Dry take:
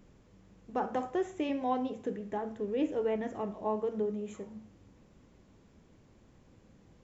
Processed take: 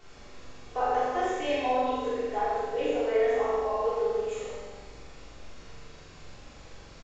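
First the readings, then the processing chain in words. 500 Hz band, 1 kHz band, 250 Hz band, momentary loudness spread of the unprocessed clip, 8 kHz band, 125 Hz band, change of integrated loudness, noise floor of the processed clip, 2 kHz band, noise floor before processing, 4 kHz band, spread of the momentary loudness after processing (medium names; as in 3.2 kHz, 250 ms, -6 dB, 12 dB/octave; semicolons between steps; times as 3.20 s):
+7.0 dB, +8.5 dB, -3.0 dB, 8 LU, no reading, +0.5 dB, +6.0 dB, -50 dBFS, +11.0 dB, -62 dBFS, +11.0 dB, 12 LU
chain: high-pass 480 Hz 24 dB/octave; comb 4 ms, depth 43%; compression, threshold -32 dBFS, peak gain reduction 8.5 dB; added noise pink -62 dBFS; vibrato 9.1 Hz 34 cents; simulated room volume 470 m³, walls mixed, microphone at 3.4 m; resampled via 16 kHz; flutter echo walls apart 7.4 m, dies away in 0.97 s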